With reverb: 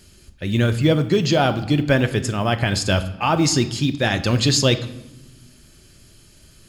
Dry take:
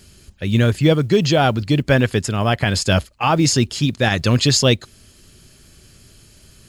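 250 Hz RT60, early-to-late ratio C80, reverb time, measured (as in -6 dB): 1.9 s, 16.0 dB, 1.0 s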